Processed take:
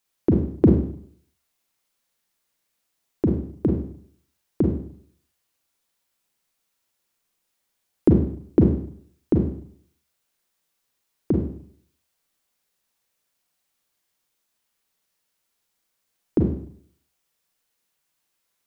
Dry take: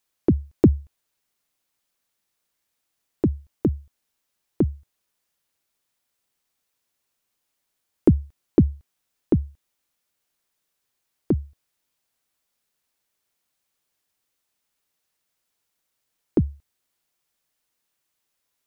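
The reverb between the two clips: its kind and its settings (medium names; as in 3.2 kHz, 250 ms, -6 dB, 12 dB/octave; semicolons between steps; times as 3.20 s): Schroeder reverb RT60 0.59 s, combs from 33 ms, DRR 0.5 dB; trim -1 dB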